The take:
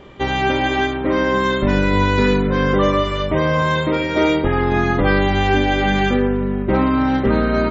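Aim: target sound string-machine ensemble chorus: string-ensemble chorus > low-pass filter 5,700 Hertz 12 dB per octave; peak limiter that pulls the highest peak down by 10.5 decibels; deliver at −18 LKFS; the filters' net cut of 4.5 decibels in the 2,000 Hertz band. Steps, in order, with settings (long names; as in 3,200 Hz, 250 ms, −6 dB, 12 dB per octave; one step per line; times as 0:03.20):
parametric band 2,000 Hz −6 dB
brickwall limiter −15.5 dBFS
string-ensemble chorus
low-pass filter 5,700 Hz 12 dB per octave
level +9 dB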